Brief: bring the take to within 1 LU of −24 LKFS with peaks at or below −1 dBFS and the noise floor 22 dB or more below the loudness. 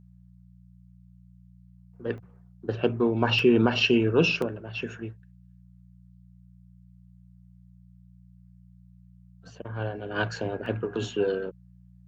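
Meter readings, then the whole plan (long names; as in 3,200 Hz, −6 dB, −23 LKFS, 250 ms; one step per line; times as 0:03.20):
number of dropouts 4; longest dropout 2.3 ms; mains hum 60 Hz; hum harmonics up to 180 Hz; level of the hum −52 dBFS; integrated loudness −26.5 LKFS; sample peak −9.0 dBFS; target loudness −24.0 LKFS
→ repair the gap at 0:02.18/0:03.39/0:04.42/0:10.66, 2.3 ms
hum removal 60 Hz, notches 3
level +2.5 dB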